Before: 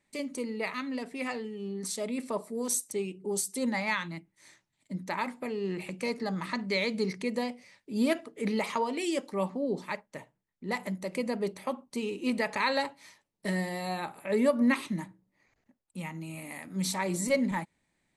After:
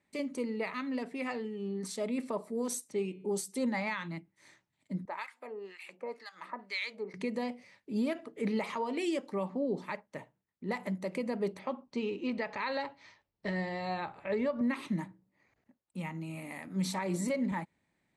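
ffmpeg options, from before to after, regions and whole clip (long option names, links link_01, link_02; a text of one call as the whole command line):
ffmpeg -i in.wav -filter_complex "[0:a]asettb=1/sr,asplit=3[link_01][link_02][link_03];[link_01]atrim=end=2.884[link_04];[link_02]atrim=start=2.88:end=3.29,asetpts=PTS-STARTPTS,afade=type=in:duration=0.004:curve=qsin,afade=type=out:start_time=0.406:duration=0.004:curve=qsin,bandreject=frequency=142.4:width_type=h:width=4,bandreject=frequency=284.8:width_type=h:width=4,bandreject=frequency=427.2:width_type=h:width=4,bandreject=frequency=569.6:width_type=h:width=4,bandreject=frequency=712:width_type=h:width=4,bandreject=frequency=854.4:width_type=h:width=4,bandreject=frequency=996.8:width_type=h:width=4,bandreject=frequency=1139.2:width_type=h:width=4,bandreject=frequency=1281.6:width_type=h:width=4,bandreject=frequency=1424:width_type=h:width=4,bandreject=frequency=1566.4:width_type=h:width=4,bandreject=frequency=1708.8:width_type=h:width=4,bandreject=frequency=1851.2:width_type=h:width=4,bandreject=frequency=1993.6:width_type=h:width=4,bandreject=frequency=2136:width_type=h:width=4,bandreject=frequency=2278.4:width_type=h:width=4,bandreject=frequency=2420.8:width_type=h:width=4,bandreject=frequency=2563.2:width_type=h:width=4,bandreject=frequency=2705.6:width_type=h:width=4,bandreject=frequency=2848:width_type=h:width=4,bandreject=frequency=2990.4:width_type=h:width=4,bandreject=frequency=3132.8:width_type=h:width=4,bandreject=frequency=3275.2:width_type=h:width=4,bandreject=frequency=3417.6:width_type=h:width=4,bandreject=frequency=3560:width_type=h:width=4,bandreject=frequency=3702.4:width_type=h:width=4,bandreject=frequency=3844.8:width_type=h:width=4,bandreject=frequency=3987.2:width_type=h:width=4,bandreject=frequency=4129.6:width_type=h:width=4,bandreject=frequency=4272:width_type=h:width=4,acrossover=split=5400[link_05][link_06];[link_06]acompressor=threshold=-52dB:ratio=4:attack=1:release=60[link_07];[link_05][link_07]amix=inputs=2:normalize=0[link_08];[link_03]atrim=start=3.286[link_09];[link_04][link_08]acrossfade=duration=0.004:curve1=hsin:curve2=qsin[link_10];[link_10][link_09]acrossfade=duration=0.004:curve1=qsin:curve2=hsin,asettb=1/sr,asplit=3[link_11][link_12][link_13];[link_11]atrim=end=5.054[link_14];[link_12]atrim=start=5.05:end=7.14,asetpts=PTS-STARTPTS,afade=type=in:duration=0.004:curve=qsin,afade=type=out:start_time=2.086:duration=0.004:curve=qsin,highpass=580,acrossover=split=1300[link_15][link_16];[link_15]aeval=exprs='val(0)*(1-1/2+1/2*cos(2*PI*2*n/s))':channel_layout=same[link_17];[link_16]aeval=exprs='val(0)*(1-1/2-1/2*cos(2*PI*2*n/s))':channel_layout=same[link_18];[link_17][link_18]amix=inputs=2:normalize=0[link_19];[link_13]atrim=start=7.136[link_20];[link_14][link_19]acrossfade=duration=0.004:curve1=hsin:curve2=qsin[link_21];[link_21][link_20]acrossfade=duration=0.004:curve1=qsin:curve2=hsin,asettb=1/sr,asplit=3[link_22][link_23][link_24];[link_22]atrim=end=11.594[link_25];[link_23]atrim=start=11.59:end=14.61,asetpts=PTS-STARTPTS,afade=type=in:duration=0.004:curve=qsin,afade=type=out:start_time=3.016:duration=0.004:curve=qsin,lowpass=frequency=5800:width=0.5412,lowpass=frequency=5800:width=1.3066,asubboost=boost=11:cutoff=74[link_26];[link_24]atrim=start=14.606[link_27];[link_25][link_26]acrossfade=duration=0.004:curve1=hsin:curve2=qsin[link_28];[link_28][link_27]acrossfade=duration=0.004:curve1=qsin:curve2=hsin,highpass=54,highshelf=frequency=4400:gain=-10,alimiter=limit=-24dB:level=0:latency=1:release=149" out.wav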